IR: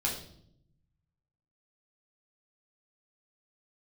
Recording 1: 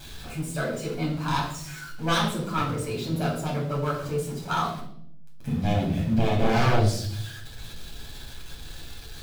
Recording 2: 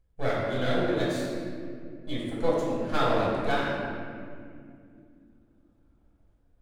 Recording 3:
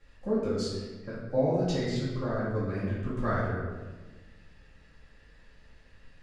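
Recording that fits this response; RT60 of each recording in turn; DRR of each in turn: 1; 0.70, 2.4, 1.3 s; -4.0, -7.0, -12.5 dB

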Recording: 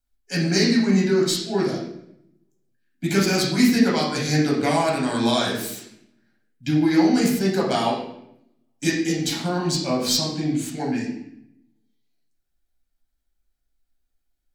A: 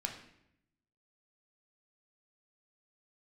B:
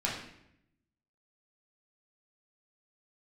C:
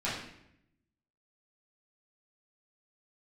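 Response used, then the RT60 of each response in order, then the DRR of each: B; 0.75, 0.75, 0.75 s; 2.0, -5.0, -10.5 dB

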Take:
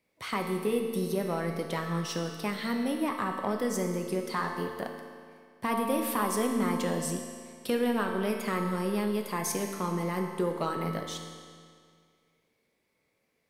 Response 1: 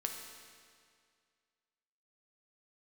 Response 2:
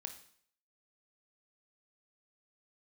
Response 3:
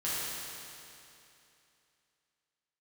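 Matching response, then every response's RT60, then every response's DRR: 1; 2.1, 0.60, 2.8 s; 2.0, 5.5, -10.5 dB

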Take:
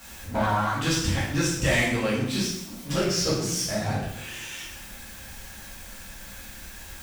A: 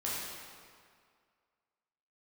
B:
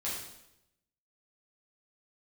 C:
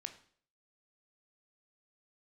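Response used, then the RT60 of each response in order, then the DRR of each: B; 2.1, 0.85, 0.55 s; -7.5, -8.0, 7.0 dB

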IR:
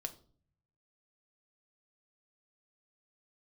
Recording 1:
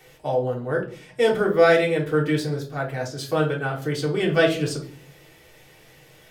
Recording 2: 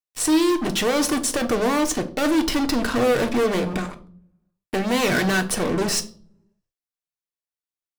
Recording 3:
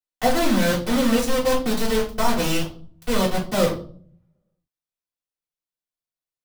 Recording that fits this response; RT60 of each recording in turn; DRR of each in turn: 2; 0.45, 0.50, 0.45 s; -3.0, 6.0, -11.0 dB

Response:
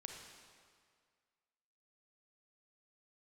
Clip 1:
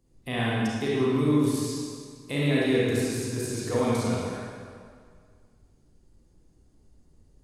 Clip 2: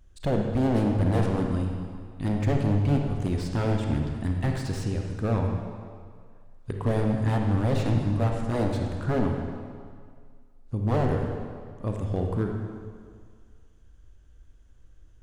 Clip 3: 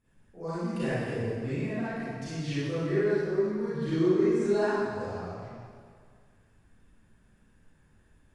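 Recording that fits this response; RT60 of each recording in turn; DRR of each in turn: 2; 2.0, 2.0, 2.0 s; -6.5, 1.5, -13.5 dB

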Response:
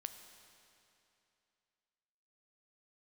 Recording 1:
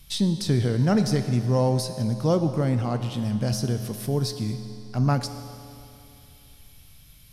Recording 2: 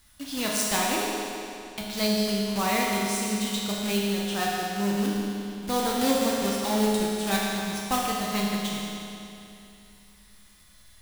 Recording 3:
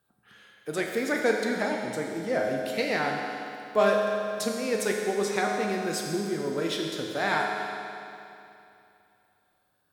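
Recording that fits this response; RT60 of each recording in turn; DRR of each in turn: 1; 2.8, 2.8, 2.8 s; 8.0, -4.5, 0.0 dB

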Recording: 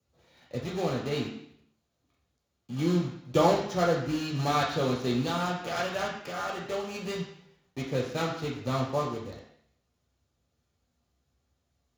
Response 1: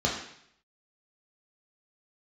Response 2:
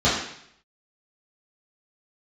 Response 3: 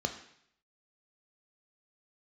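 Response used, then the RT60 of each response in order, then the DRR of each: 1; 0.70, 0.70, 0.70 s; -2.5, -11.0, 6.0 dB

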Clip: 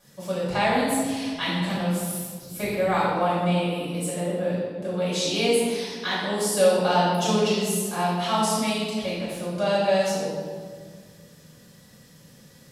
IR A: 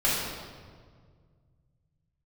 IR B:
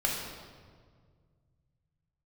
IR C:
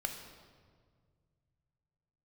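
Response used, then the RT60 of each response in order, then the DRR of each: A; 1.8, 1.8, 1.8 s; -9.5, -2.5, 4.0 dB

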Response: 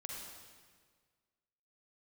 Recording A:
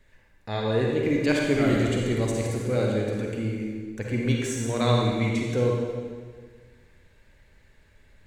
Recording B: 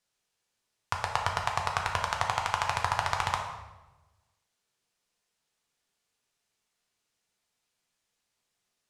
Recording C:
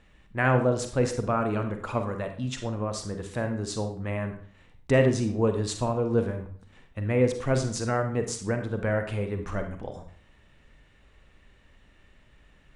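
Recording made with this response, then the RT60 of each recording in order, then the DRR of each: A; 1.7, 1.1, 0.50 s; -1.5, 1.0, 6.0 dB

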